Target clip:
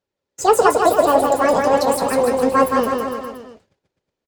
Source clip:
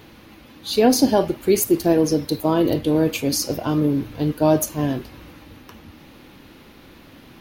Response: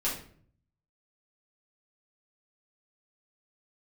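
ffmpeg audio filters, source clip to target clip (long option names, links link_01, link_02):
-filter_complex "[0:a]aemphasis=mode=reproduction:type=cd,agate=range=-39dB:threshold=-38dB:ratio=16:detection=peak,flanger=delay=3.1:depth=4.4:regen=-48:speed=1.3:shape=triangular,asplit=2[link_01][link_02];[link_02]aecho=0:1:290|551|785.9|997.3|1188:0.631|0.398|0.251|0.158|0.1[link_03];[link_01][link_03]amix=inputs=2:normalize=0,asetrate=76440,aresample=44100,volume=5.5dB"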